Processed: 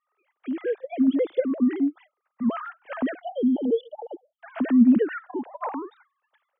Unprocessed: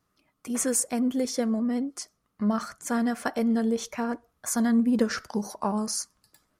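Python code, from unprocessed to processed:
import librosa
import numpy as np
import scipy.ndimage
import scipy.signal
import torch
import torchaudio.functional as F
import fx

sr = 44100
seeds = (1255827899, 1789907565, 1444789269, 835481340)

y = fx.sine_speech(x, sr)
y = fx.spec_erase(y, sr, start_s=3.21, length_s=1.18, low_hz=900.0, high_hz=2900.0)
y = y * librosa.db_to_amplitude(2.5)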